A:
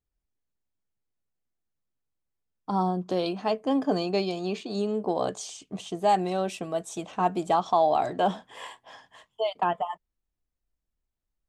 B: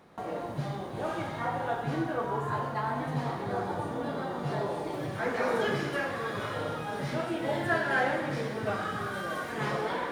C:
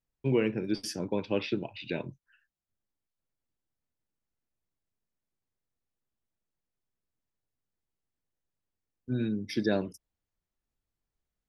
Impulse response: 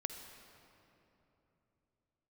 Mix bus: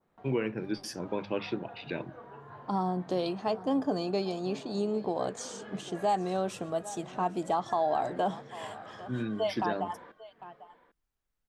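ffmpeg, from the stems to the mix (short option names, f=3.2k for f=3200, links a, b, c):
-filter_complex "[0:a]volume=-2.5dB,asplit=2[a][b];[b]volume=-19.5dB[c];[1:a]lowpass=3.6k,volume=-17dB,asplit=2[d][e];[e]volume=-14dB[f];[2:a]equalizer=f=1.3k:w=0.83:g=7,bandreject=f=50:t=h:w=6,bandreject=f=100:t=h:w=6,bandreject=f=150:t=h:w=6,bandreject=f=200:t=h:w=6,volume=-3.5dB[g];[c][f]amix=inputs=2:normalize=0,aecho=0:1:799:1[h];[a][d][g][h]amix=inputs=4:normalize=0,adynamicequalizer=threshold=0.00282:dfrequency=2600:dqfactor=1.3:tfrequency=2600:tqfactor=1.3:attack=5:release=100:ratio=0.375:range=2.5:mode=cutabove:tftype=bell,alimiter=limit=-19.5dB:level=0:latency=1:release=192"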